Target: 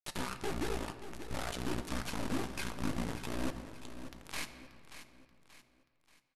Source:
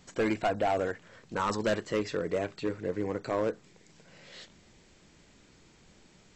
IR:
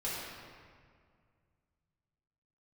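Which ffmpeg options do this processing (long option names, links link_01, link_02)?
-filter_complex "[0:a]highshelf=frequency=2900:gain=3,acompressor=threshold=-38dB:ratio=10,acrossover=split=1400[link_01][link_02];[link_01]aeval=exprs='val(0)*(1-0.7/2+0.7/2*cos(2*PI*1.7*n/s))':channel_layout=same[link_03];[link_02]aeval=exprs='val(0)*(1-0.7/2-0.7/2*cos(2*PI*1.7*n/s))':channel_layout=same[link_04];[link_03][link_04]amix=inputs=2:normalize=0,aeval=exprs='0.0299*(cos(1*acos(clip(val(0)/0.0299,-1,1)))-cos(1*PI/2))+0.00133*(cos(3*acos(clip(val(0)/0.0299,-1,1)))-cos(3*PI/2))+0.000266*(cos(5*acos(clip(val(0)/0.0299,-1,1)))-cos(5*PI/2))+0.000422*(cos(7*acos(clip(val(0)/0.0299,-1,1)))-cos(7*PI/2))+0.00473*(cos(8*acos(clip(val(0)/0.0299,-1,1)))-cos(8*PI/2))':channel_layout=same,acrusher=bits=6:mix=0:aa=0.000001,asetrate=25476,aresample=44100,atempo=1.73107,flanger=delay=0.8:depth=8.9:regen=-59:speed=1.4:shape=sinusoidal,aecho=1:1:582|1164|1746|2328:0.251|0.105|0.0443|0.0186,asplit=2[link_05][link_06];[1:a]atrim=start_sample=2205[link_07];[link_06][link_07]afir=irnorm=-1:irlink=0,volume=-13dB[link_08];[link_05][link_08]amix=inputs=2:normalize=0,volume=10dB"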